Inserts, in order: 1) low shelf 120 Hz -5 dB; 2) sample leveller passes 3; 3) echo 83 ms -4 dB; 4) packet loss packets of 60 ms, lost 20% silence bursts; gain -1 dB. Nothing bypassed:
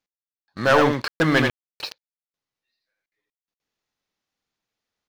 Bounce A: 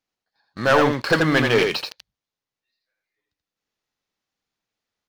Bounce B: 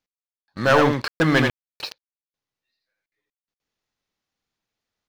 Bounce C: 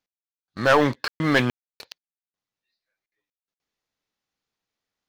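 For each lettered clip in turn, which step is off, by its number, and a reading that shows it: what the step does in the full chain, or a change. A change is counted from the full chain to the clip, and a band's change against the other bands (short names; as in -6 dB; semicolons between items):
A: 4, 4 kHz band +2.0 dB; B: 1, 125 Hz band +2.0 dB; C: 3, momentary loudness spread change -10 LU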